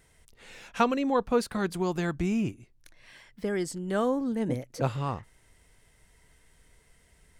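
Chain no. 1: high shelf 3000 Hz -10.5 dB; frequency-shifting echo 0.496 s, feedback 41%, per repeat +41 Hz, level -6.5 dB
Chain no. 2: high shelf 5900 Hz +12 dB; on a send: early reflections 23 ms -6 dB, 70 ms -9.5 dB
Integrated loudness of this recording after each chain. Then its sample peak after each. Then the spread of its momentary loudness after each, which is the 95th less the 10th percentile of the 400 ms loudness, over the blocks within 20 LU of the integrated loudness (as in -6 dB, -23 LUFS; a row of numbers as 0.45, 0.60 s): -29.5, -27.5 LUFS; -12.5, -10.5 dBFS; 16, 13 LU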